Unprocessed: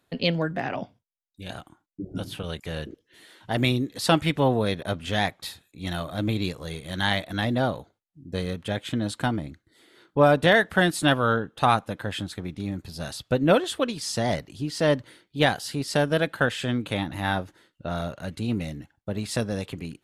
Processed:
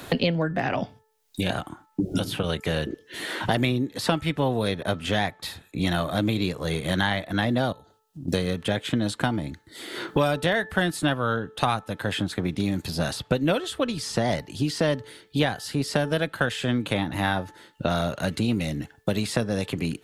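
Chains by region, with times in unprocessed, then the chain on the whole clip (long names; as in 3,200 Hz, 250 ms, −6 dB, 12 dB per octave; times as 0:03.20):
0:07.72–0:08.28: downward compressor 3 to 1, threshold −53 dBFS + Butterworth band-reject 2,200 Hz, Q 5
whole clip: hum removal 437 Hz, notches 4; multiband upward and downward compressor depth 100%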